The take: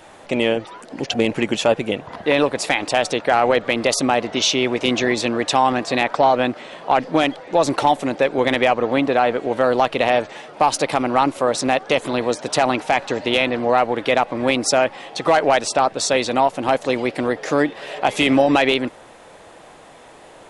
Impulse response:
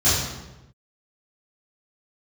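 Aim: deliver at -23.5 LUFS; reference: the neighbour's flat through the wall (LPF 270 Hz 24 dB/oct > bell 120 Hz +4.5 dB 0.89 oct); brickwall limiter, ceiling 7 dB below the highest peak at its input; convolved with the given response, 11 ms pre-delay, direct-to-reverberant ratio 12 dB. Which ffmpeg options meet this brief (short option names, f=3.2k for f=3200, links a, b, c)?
-filter_complex "[0:a]alimiter=limit=-10dB:level=0:latency=1,asplit=2[a][b];[1:a]atrim=start_sample=2205,adelay=11[c];[b][c]afir=irnorm=-1:irlink=0,volume=-30dB[d];[a][d]amix=inputs=2:normalize=0,lowpass=f=270:w=0.5412,lowpass=f=270:w=1.3066,equalizer=f=120:t=o:w=0.89:g=4.5,volume=6dB"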